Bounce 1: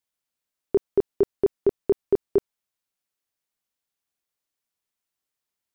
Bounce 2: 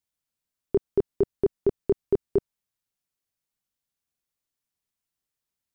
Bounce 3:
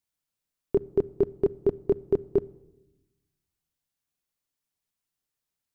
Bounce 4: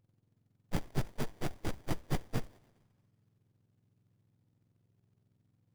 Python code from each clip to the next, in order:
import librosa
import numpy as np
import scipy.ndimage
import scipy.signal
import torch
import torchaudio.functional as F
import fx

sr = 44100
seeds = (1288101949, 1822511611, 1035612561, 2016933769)

y1 = fx.bass_treble(x, sr, bass_db=8, treble_db=2)
y1 = y1 * librosa.db_to_amplitude(-3.5)
y2 = fx.room_shoebox(y1, sr, seeds[0], volume_m3=3400.0, walls='furnished', distance_m=0.43)
y3 = fx.octave_mirror(y2, sr, pivot_hz=1400.0)
y3 = fx.quant_float(y3, sr, bits=2)
y3 = fx.running_max(y3, sr, window=33)
y3 = y3 * librosa.db_to_amplitude(1.5)